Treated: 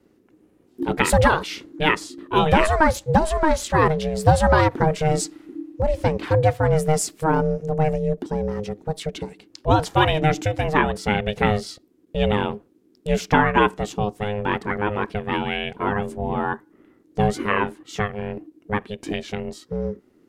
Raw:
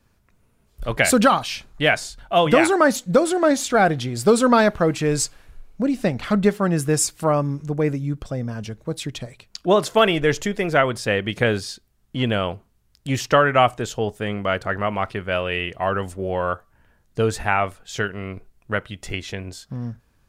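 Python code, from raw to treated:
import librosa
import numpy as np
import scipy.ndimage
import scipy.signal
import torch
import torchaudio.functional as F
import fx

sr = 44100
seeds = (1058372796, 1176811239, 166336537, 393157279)

y = fx.bass_treble(x, sr, bass_db=6, treble_db=-3)
y = y * np.sin(2.0 * np.pi * 310.0 * np.arange(len(y)) / sr)
y = fx.end_taper(y, sr, db_per_s=540.0)
y = y * 10.0 ** (1.0 / 20.0)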